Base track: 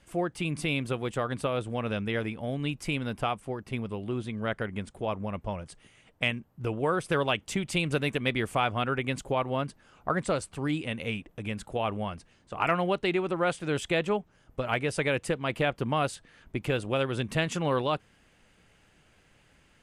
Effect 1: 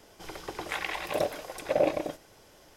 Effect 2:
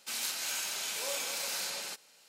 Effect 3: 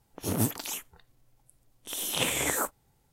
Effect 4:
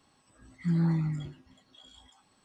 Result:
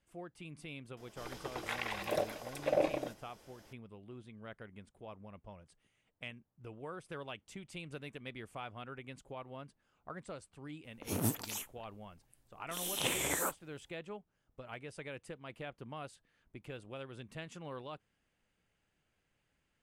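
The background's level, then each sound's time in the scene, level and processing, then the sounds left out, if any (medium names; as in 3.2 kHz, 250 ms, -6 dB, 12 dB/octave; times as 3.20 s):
base track -18 dB
0.97 s: add 1 -5.5 dB
10.84 s: add 3 -6 dB
not used: 2, 4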